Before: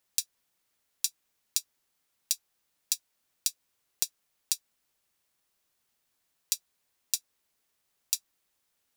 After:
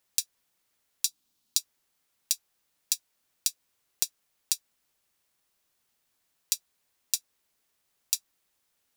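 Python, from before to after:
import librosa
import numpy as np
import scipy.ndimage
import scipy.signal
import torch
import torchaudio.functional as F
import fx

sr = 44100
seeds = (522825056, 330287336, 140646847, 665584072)

y = fx.graphic_eq(x, sr, hz=(250, 500, 2000, 4000), db=(8, -6, -8, 5), at=(1.05, 1.59))
y = F.gain(torch.from_numpy(y), 1.5).numpy()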